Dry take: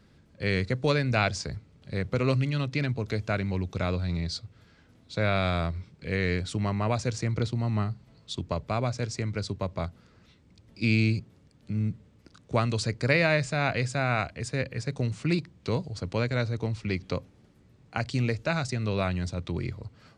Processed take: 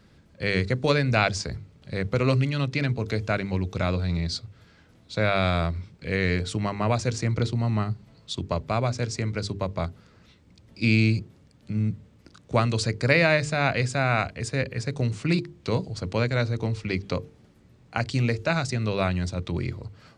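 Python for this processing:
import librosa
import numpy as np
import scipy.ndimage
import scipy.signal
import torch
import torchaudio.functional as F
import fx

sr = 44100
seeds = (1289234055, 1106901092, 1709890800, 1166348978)

y = fx.hum_notches(x, sr, base_hz=50, count=9)
y = y * 10.0 ** (3.5 / 20.0)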